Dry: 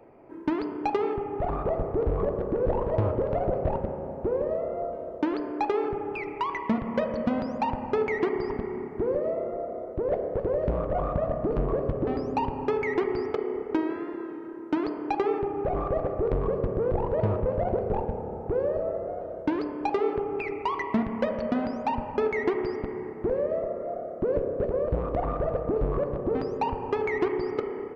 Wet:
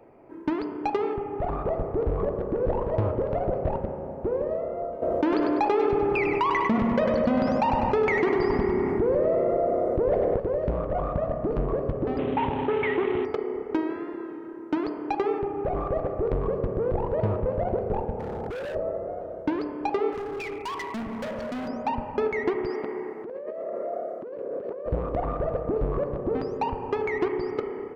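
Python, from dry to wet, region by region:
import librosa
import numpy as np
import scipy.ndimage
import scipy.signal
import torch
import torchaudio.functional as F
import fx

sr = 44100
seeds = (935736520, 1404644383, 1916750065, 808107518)

y = fx.chain(x, sr, fx.echo_feedback(ms=99, feedback_pct=45, wet_db=-7.5),
    fx.env_flatten(amount_pct=70), at=(5.02, 10.36))
y = fx.chain(y, sr, fx.cvsd(bps=16000),
    fx.highpass(hz=60.0, slope=12),
    fx.env_flatten(amount_pct=50), at=(12.18, 13.25))
y = fx.chain(y, sr, fx.clip_hard(threshold_db=-32.0),
    fx.env_flatten(amount_pct=100), at=(18.19, 18.75))
y = fx.chain(y, sr, fx.high_shelf(hz=3800.0, db=4.5),
    fx.overload_stage(gain_db=30.0), at=(20.12, 21.68))
y = fx.chain(y, sr, fx.highpass(hz=300.0, slope=12),
    fx.over_compress(threshold_db=-33.0, ratio=-1.0), at=(22.7, 24.86))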